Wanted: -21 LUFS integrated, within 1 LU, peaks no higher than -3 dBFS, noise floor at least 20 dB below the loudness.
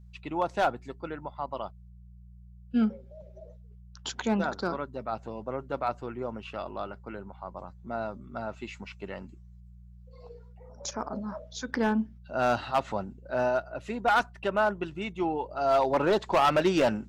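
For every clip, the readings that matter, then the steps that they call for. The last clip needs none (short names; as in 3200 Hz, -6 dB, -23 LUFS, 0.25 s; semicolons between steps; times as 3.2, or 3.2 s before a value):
clipped 0.5%; flat tops at -17.5 dBFS; hum 60 Hz; harmonics up to 180 Hz; hum level -48 dBFS; loudness -30.0 LUFS; peak -17.5 dBFS; loudness target -21.0 LUFS
-> clip repair -17.5 dBFS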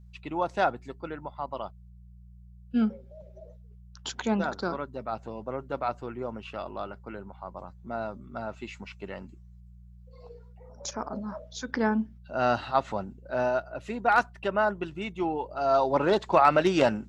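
clipped 0.0%; hum 60 Hz; harmonics up to 180 Hz; hum level -48 dBFS
-> de-hum 60 Hz, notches 3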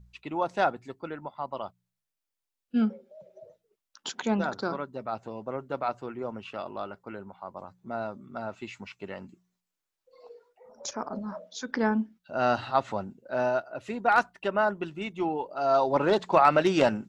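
hum none; loudness -29.0 LUFS; peak -8.5 dBFS; loudness target -21.0 LUFS
-> gain +8 dB; limiter -3 dBFS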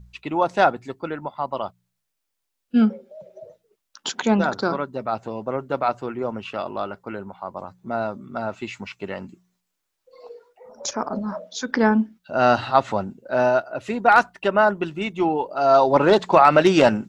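loudness -21.5 LUFS; peak -3.0 dBFS; noise floor -79 dBFS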